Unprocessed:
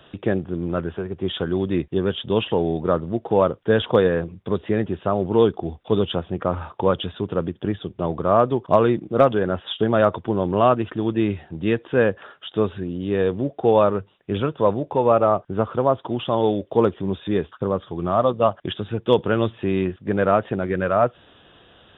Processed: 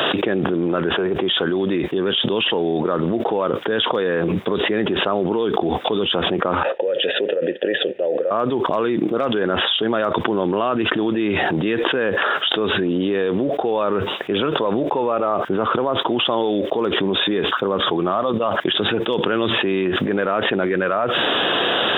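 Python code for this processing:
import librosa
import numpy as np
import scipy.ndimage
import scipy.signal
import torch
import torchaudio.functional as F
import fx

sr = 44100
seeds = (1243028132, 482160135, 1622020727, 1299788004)

y = fx.vowel_filter(x, sr, vowel='e', at=(6.63, 8.31))
y = scipy.signal.sosfilt(scipy.signal.butter(2, 310.0, 'highpass', fs=sr, output='sos'), y)
y = fx.dynamic_eq(y, sr, hz=640.0, q=0.96, threshold_db=-29.0, ratio=4.0, max_db=-6)
y = fx.env_flatten(y, sr, amount_pct=100)
y = F.gain(torch.from_numpy(y), -3.0).numpy()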